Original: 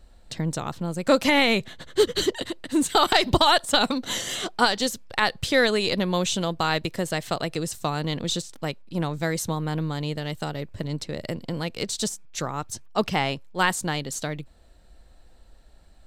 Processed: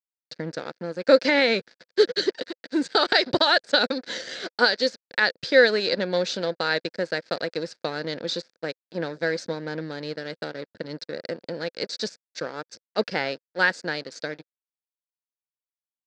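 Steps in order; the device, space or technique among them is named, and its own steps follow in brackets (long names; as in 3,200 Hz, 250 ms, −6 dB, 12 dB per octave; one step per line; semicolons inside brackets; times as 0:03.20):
blown loudspeaker (dead-zone distortion −36 dBFS; loudspeaker in its box 230–5,300 Hz, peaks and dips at 510 Hz +8 dB, 790 Hz −5 dB, 1,100 Hz −10 dB, 1,600 Hz +9 dB, 3,000 Hz −8 dB, 4,700 Hz +9 dB)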